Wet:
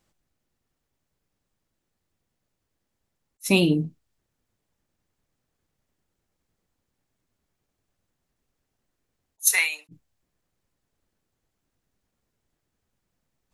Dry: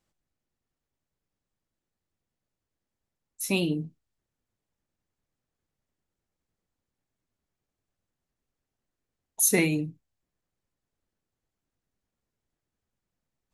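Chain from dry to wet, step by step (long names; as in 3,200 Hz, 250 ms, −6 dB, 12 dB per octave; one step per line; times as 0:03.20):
0:09.47–0:09.89: high-pass filter 1,000 Hz 24 dB per octave
level that may rise only so fast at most 570 dB per second
level +7 dB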